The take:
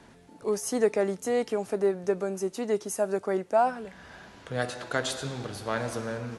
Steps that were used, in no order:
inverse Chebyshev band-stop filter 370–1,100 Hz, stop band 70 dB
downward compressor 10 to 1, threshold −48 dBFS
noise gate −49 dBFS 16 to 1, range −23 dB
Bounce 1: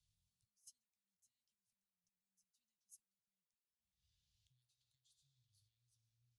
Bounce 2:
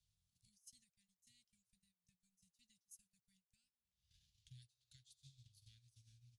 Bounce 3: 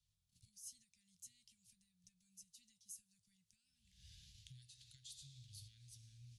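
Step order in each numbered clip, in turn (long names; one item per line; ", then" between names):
downward compressor, then inverse Chebyshev band-stop filter, then noise gate
downward compressor, then noise gate, then inverse Chebyshev band-stop filter
noise gate, then downward compressor, then inverse Chebyshev band-stop filter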